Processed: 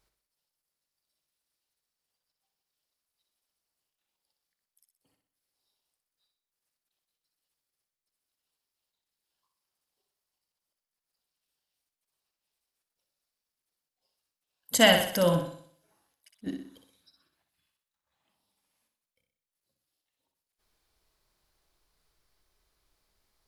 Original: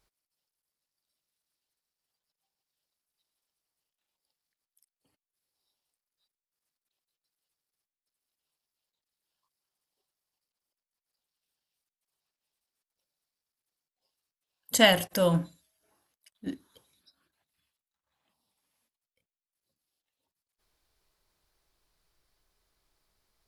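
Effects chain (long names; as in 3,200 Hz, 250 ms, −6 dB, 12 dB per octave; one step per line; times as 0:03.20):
flutter between parallel walls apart 10.6 metres, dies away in 0.57 s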